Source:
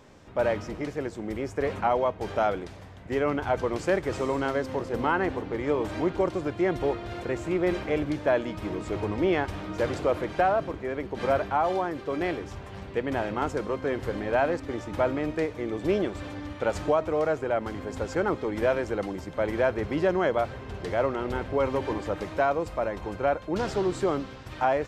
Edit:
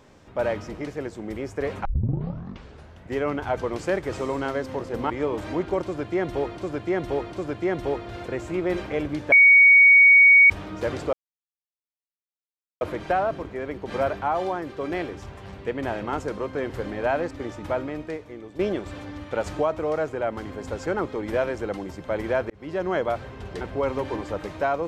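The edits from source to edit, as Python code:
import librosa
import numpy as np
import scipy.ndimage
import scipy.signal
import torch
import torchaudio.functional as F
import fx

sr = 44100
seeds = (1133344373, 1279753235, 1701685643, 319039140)

y = fx.edit(x, sr, fx.tape_start(start_s=1.85, length_s=1.22),
    fx.cut(start_s=5.1, length_s=0.47),
    fx.repeat(start_s=6.29, length_s=0.75, count=3),
    fx.bleep(start_s=8.29, length_s=1.18, hz=2240.0, db=-9.5),
    fx.insert_silence(at_s=10.1, length_s=1.68),
    fx.fade_out_to(start_s=14.79, length_s=1.09, floor_db=-12.5),
    fx.fade_in_span(start_s=19.79, length_s=0.43),
    fx.cut(start_s=20.9, length_s=0.48), tone=tone)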